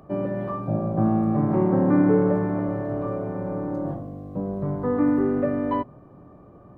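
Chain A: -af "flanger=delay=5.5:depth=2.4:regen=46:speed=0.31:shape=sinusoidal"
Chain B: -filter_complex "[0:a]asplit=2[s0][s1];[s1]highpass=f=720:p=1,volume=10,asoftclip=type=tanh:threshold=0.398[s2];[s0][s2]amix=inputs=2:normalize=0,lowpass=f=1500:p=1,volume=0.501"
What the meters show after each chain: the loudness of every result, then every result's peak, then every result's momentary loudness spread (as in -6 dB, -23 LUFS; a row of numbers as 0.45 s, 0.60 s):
-28.0 LUFS, -20.0 LUFS; -12.0 dBFS, -8.5 dBFS; 11 LU, 8 LU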